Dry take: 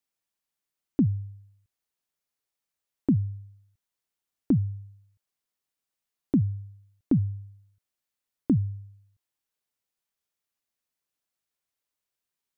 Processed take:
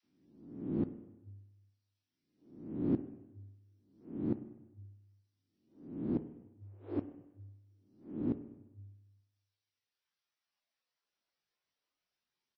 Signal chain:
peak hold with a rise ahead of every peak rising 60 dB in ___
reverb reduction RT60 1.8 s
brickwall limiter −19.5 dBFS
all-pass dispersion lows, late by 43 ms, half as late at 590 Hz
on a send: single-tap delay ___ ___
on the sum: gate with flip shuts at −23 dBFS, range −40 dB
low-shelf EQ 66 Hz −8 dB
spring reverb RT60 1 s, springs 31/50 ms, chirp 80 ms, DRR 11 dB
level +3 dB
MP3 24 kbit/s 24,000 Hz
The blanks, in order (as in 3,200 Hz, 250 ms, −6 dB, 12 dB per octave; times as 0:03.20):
0.88 s, 83 ms, −23.5 dB